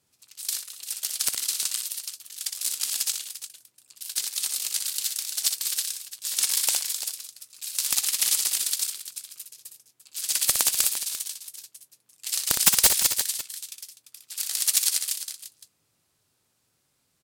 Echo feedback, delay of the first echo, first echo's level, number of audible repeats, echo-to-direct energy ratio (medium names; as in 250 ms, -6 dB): no regular repeats, 61 ms, -6.5 dB, 2, -5.5 dB